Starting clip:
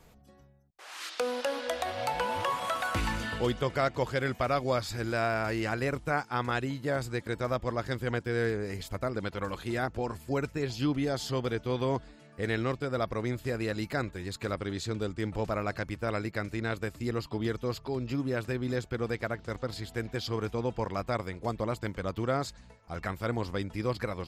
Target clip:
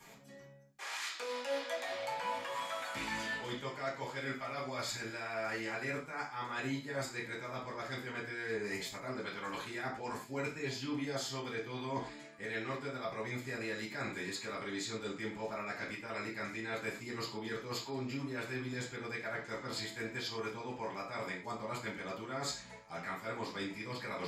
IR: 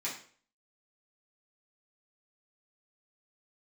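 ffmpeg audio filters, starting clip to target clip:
-filter_complex "[0:a]lowshelf=f=440:g=-9,areverse,acompressor=threshold=-43dB:ratio=10,areverse[a];[1:a]atrim=start_sample=2205,afade=t=out:st=0.18:d=0.01,atrim=end_sample=8379[b];[a][b]afir=irnorm=-1:irlink=0,volume=5dB"

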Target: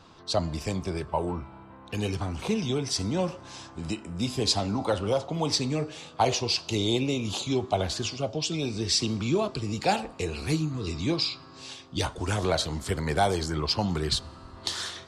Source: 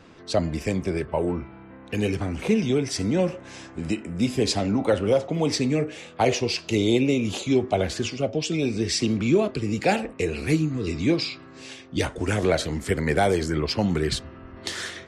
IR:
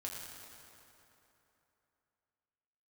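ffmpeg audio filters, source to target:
-filter_complex "[0:a]equalizer=f=250:t=o:w=1:g=-5,equalizer=f=500:t=o:w=1:g=-5,equalizer=f=1k:t=o:w=1:g=7,equalizer=f=2k:t=o:w=1:g=-9,equalizer=f=4k:t=o:w=1:g=6,asplit=2[a][b];[1:a]atrim=start_sample=2205[c];[b][c]afir=irnorm=-1:irlink=0,volume=-21dB[d];[a][d]amix=inputs=2:normalize=0,volume=-2dB"

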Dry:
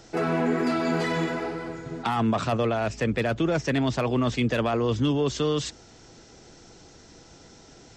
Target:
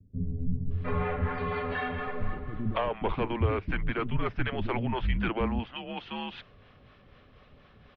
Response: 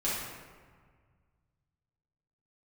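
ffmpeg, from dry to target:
-filter_complex "[0:a]acrossover=split=700[a][b];[a]aeval=exprs='val(0)*(1-0.5/2+0.5/2*cos(2*PI*4.1*n/s))':c=same[c];[b]aeval=exprs='val(0)*(1-0.5/2-0.5/2*cos(2*PI*4.1*n/s))':c=same[d];[c][d]amix=inputs=2:normalize=0,highpass=f=170:t=q:w=0.5412,highpass=f=170:t=q:w=1.307,lowpass=f=3.4k:t=q:w=0.5176,lowpass=f=3.4k:t=q:w=0.7071,lowpass=f=3.4k:t=q:w=1.932,afreqshift=-240,acrossover=split=260[e][f];[f]adelay=710[g];[e][g]amix=inputs=2:normalize=0"

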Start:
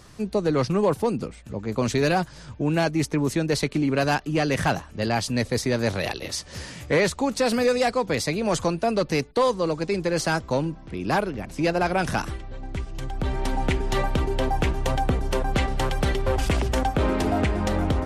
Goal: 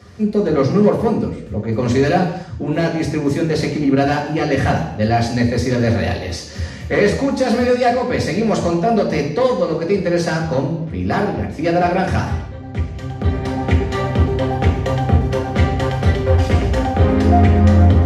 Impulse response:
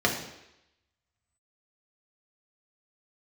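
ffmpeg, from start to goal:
-filter_complex "[0:a]asplit=2[a][b];[b]volume=21dB,asoftclip=hard,volume=-21dB,volume=-8dB[c];[a][c]amix=inputs=2:normalize=0,equalizer=f=86:t=o:w=0.25:g=15[d];[1:a]atrim=start_sample=2205,afade=t=out:st=0.35:d=0.01,atrim=end_sample=15876[e];[d][e]afir=irnorm=-1:irlink=0,volume=-11.5dB"

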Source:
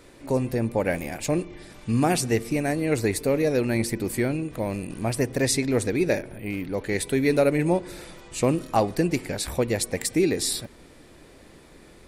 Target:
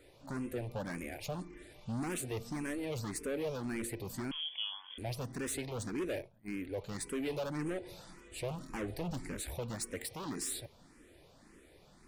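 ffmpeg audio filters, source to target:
-filter_complex "[0:a]asettb=1/sr,asplit=3[a][b][c];[a]atrim=end=5.974[d];[b]atrim=start=5.97:end=6.48,asetpts=PTS-STARTPTS,afade=t=in:d=0.004:c=qsin,afade=t=out:st=0.506:d=0.004:c=qsin,agate=range=-33dB:threshold=-26dB:ratio=3:detection=peak[e];[c]atrim=start=6.476[f];[d][e]acrossfade=d=0.004:c1=hsin:c2=qsin[g];[g][f]acrossfade=d=0.004:c1=qsin:c2=hsin,asettb=1/sr,asplit=3[h][i][j];[h]atrim=end=8.694[k];[i]atrim=start=8.69:end=9.4,asetpts=PTS-STARTPTS,afade=t=in:d=0.004:c=qsin,afade=t=out:st=0.706:d=0.004:c=qsin,lowshelf=f=120:g=11[l];[j]atrim=start=9.396[m];[k][l]acrossfade=d=0.004:c1=hsin:c2=qsin[n];[n][m]acrossfade=d=0.004:c1=qsin:c2=hsin,asoftclip=type=hard:threshold=-24.5dB,asettb=1/sr,asplit=3[o][p][q];[o]atrim=end=4.314[r];[p]atrim=start=4.31:end=4.98,asetpts=PTS-STARTPTS,afade=t=in:d=0.004:c=qsin,afade=t=out:st=0.666:d=0.004:c=qsin,lowpass=f=3k:t=q:w=0.5098,lowpass=f=3k:t=q:w=0.6013,lowpass=f=3k:t=q:w=0.9,lowpass=f=3k:t=q:w=2.563,afreqshift=-3500[s];[q]atrim=start=4.976[t];[r][s]acrossfade=d=0.004:c1=hsin:c2=qsin[u];[u][t]acrossfade=d=0.004:c1=qsin:c2=hsin,asplit=2[v][w];[w]afreqshift=1.8[x];[v][x]amix=inputs=2:normalize=1,volume=-7.5dB"

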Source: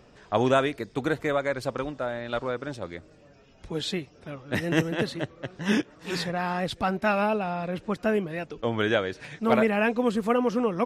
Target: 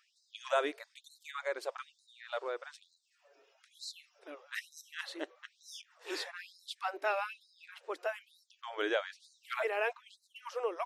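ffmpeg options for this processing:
-filter_complex "[0:a]asettb=1/sr,asplit=3[a][b][c];[a]atrim=end=9.934[d];[b]atrim=start=9.93:end=10.36,asetpts=PTS-STARTPTS,afade=t=in:d=0.004:c=qsin,afade=t=out:st=0.426:d=0.004:c=qsin,aemphasis=mode=reproduction:type=riaa[e];[c]atrim=start=10.356[f];[d][e]acrossfade=d=0.004:c1=hsin:c2=qsin[g];[g][f]acrossfade=d=0.004:c1=qsin:c2=hsin,afftfilt=real='re*gte(b*sr/1024,290*pow(3900/290,0.5+0.5*sin(2*PI*1.1*pts/sr)))':imag='im*gte(b*sr/1024,290*pow(3900/290,0.5+0.5*sin(2*PI*1.1*pts/sr)))':win_size=1024:overlap=0.75,volume=-7.5dB"

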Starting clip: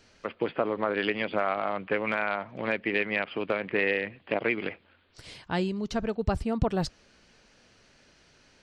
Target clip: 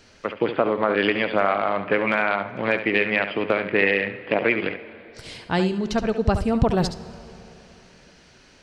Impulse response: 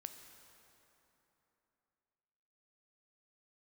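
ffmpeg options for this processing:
-filter_complex "[0:a]asplit=2[a][b];[1:a]atrim=start_sample=2205,adelay=70[c];[b][c]afir=irnorm=-1:irlink=0,volume=-4.5dB[d];[a][d]amix=inputs=2:normalize=0,volume=6.5dB"

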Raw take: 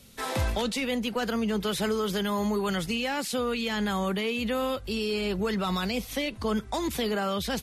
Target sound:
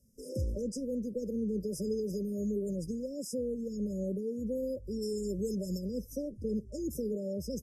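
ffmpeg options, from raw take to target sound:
-filter_complex "[0:a]asplit=3[a][b][c];[a]afade=t=out:st=5.01:d=0.02[d];[b]highshelf=f=5k:t=q:w=1.5:g=8.5,afade=t=in:st=5.01:d=0.02,afade=t=out:st=5.77:d=0.02[e];[c]afade=t=in:st=5.77:d=0.02[f];[d][e][f]amix=inputs=3:normalize=0,afftfilt=real='re*(1-between(b*sr/4096,610,4900))':imag='im*(1-between(b*sr/4096,610,4900))':win_size=4096:overlap=0.75,afftdn=nr=13:nf=-41,volume=-5dB"

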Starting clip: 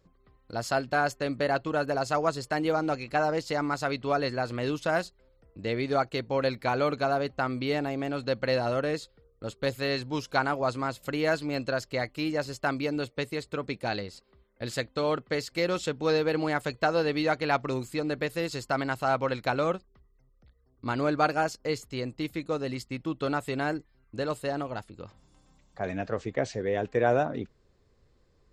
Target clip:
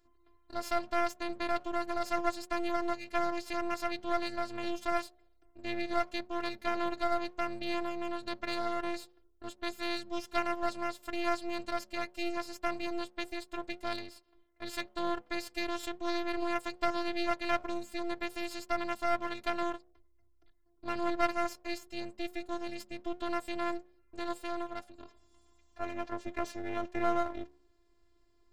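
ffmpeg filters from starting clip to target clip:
-af "afftfilt=real='hypot(re,im)*cos(PI*b)':imag='0':win_size=512:overlap=0.75,bandreject=f=71.06:t=h:w=4,bandreject=f=142.12:t=h:w=4,bandreject=f=213.18:t=h:w=4,bandreject=f=284.24:t=h:w=4,bandreject=f=355.3:t=h:w=4,bandreject=f=426.36:t=h:w=4,bandreject=f=497.42:t=h:w=4,bandreject=f=568.48:t=h:w=4,bandreject=f=639.54:t=h:w=4,bandreject=f=710.6:t=h:w=4,bandreject=f=781.66:t=h:w=4,aeval=exprs='max(val(0),0)':c=same"

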